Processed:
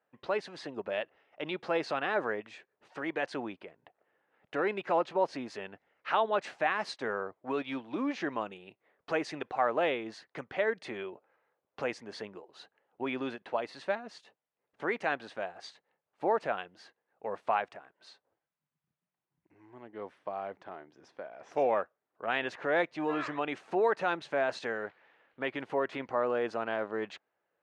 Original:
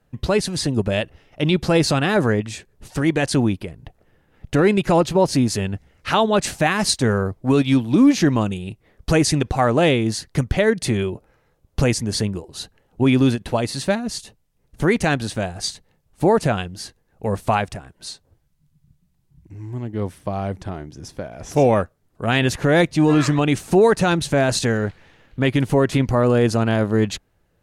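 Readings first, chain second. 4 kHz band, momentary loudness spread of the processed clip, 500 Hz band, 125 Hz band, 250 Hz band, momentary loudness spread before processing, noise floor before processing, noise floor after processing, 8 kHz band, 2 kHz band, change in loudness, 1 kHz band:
-18.0 dB, 17 LU, -12.0 dB, -31.5 dB, -20.5 dB, 17 LU, -64 dBFS, under -85 dBFS, under -25 dB, -10.0 dB, -14.0 dB, -9.0 dB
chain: band-pass 550–2200 Hz; trim -8 dB

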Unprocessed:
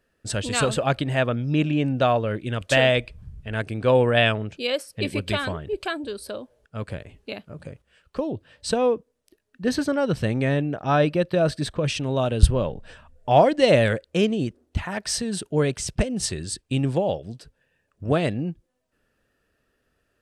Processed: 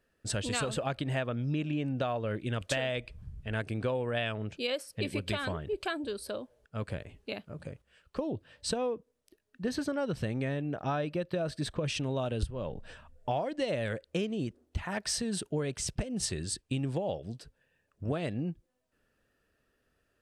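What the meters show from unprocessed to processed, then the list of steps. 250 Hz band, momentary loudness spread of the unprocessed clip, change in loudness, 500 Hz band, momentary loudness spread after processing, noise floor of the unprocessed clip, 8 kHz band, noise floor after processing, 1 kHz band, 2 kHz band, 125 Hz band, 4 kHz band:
-9.5 dB, 17 LU, -11.0 dB, -11.5 dB, 9 LU, -73 dBFS, -6.0 dB, -77 dBFS, -12.0 dB, -10.5 dB, -9.5 dB, -9.0 dB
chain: compression 16:1, threshold -24 dBFS, peak gain reduction 18.5 dB; trim -4 dB

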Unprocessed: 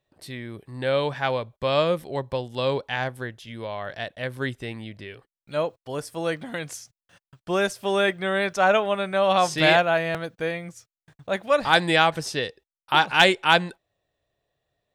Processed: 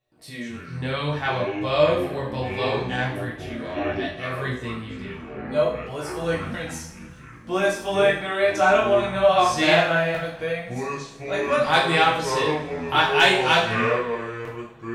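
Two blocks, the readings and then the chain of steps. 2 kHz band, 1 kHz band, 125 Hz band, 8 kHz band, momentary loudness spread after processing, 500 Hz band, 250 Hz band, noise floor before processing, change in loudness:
+1.5 dB, +1.5 dB, +3.0 dB, +1.5 dB, 16 LU, +2.5 dB, +2.5 dB, under -85 dBFS, +1.0 dB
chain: ever faster or slower copies 102 ms, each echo -6 st, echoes 3, each echo -6 dB; chorus 0.66 Hz, delay 16 ms, depth 7.8 ms; two-slope reverb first 0.52 s, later 2.5 s, from -22 dB, DRR -3.5 dB; trim -1 dB

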